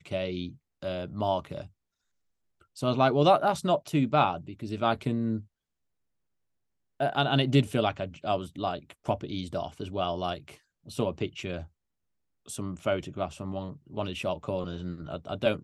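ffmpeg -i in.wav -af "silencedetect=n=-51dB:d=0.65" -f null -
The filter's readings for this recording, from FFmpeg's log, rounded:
silence_start: 1.68
silence_end: 2.61 | silence_duration: 0.94
silence_start: 5.45
silence_end: 7.00 | silence_duration: 1.55
silence_start: 11.67
silence_end: 12.46 | silence_duration: 0.79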